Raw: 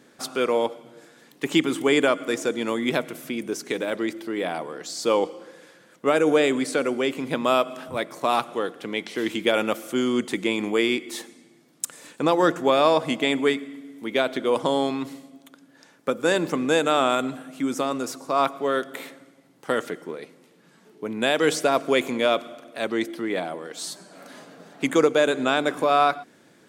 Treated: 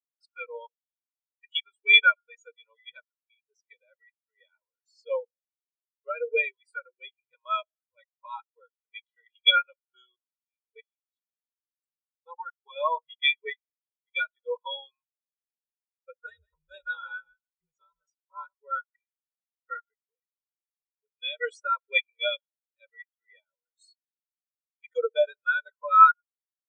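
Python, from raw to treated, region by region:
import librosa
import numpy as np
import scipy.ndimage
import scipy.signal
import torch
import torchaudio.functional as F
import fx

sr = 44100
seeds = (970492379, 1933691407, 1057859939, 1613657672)

y = fx.chain(x, sr, fx.high_shelf(hz=3600.0, db=-3.5),
    fx.level_steps(step_db=20),
    fx.notch(hz=550.0, q=9.3), at=(10.16, 12.76))
y = fx.chain(y, sr, fx.ring_mod(carrier_hz=99.0),
    fx.echo_crushed(ms=160, feedback_pct=35, bits=7, wet_db=-7.0), at=(16.26, 18.53))
y = fx.tone_stack(y, sr, knobs='10-0-10')
y = y + 0.96 * np.pad(y, (int(2.1 * sr / 1000.0), 0))[:len(y)]
y = fx.spectral_expand(y, sr, expansion=4.0)
y = F.gain(torch.from_numpy(y), 5.5).numpy()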